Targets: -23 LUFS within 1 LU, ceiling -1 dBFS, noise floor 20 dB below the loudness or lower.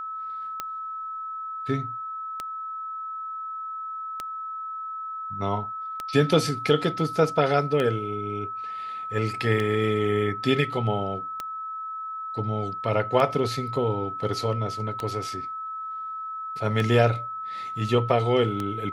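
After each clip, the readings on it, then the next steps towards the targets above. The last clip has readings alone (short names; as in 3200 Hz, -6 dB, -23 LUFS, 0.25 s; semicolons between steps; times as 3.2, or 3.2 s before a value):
clicks 11; steady tone 1300 Hz; tone level -31 dBFS; loudness -27.0 LUFS; peak -6.5 dBFS; loudness target -23.0 LUFS
-> de-click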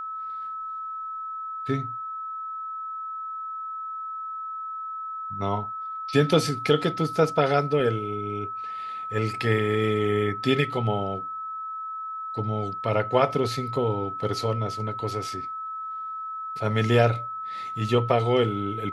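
clicks 0; steady tone 1300 Hz; tone level -31 dBFS
-> notch 1300 Hz, Q 30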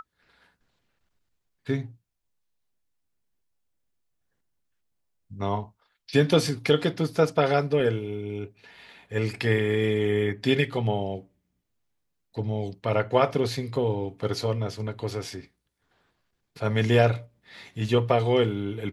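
steady tone none; loudness -26.0 LUFS; peak -6.5 dBFS; loudness target -23.0 LUFS
-> gain +3 dB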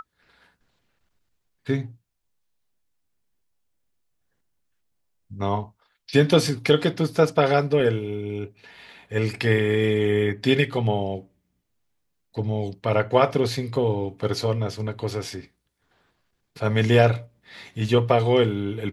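loudness -23.0 LUFS; peak -3.5 dBFS; noise floor -75 dBFS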